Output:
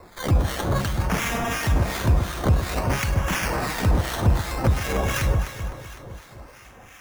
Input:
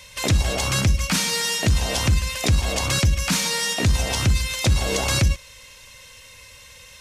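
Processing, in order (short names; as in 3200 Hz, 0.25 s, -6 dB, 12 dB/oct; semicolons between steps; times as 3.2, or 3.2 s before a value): decimation with a swept rate 14×, swing 60% 0.55 Hz; echo with dull and thin repeats by turns 0.127 s, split 980 Hz, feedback 75%, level -5 dB; harmonic tremolo 2.8 Hz, depth 70%, crossover 1200 Hz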